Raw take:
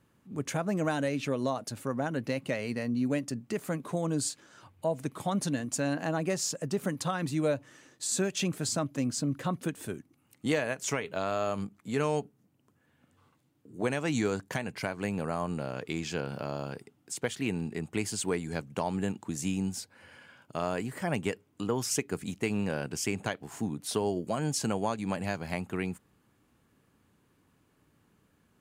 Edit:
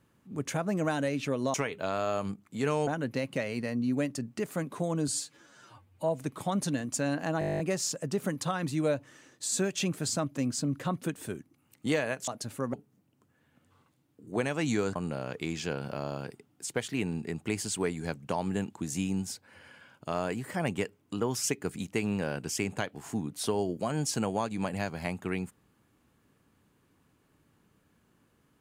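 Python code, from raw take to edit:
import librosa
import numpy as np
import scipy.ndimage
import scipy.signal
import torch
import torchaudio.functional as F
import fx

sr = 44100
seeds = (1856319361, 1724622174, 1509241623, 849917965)

y = fx.edit(x, sr, fx.swap(start_s=1.54, length_s=0.46, other_s=10.87, other_length_s=1.33),
    fx.stretch_span(start_s=4.21, length_s=0.67, factor=1.5),
    fx.stutter(start_s=6.19, slice_s=0.02, count=11),
    fx.cut(start_s=14.42, length_s=1.01), tone=tone)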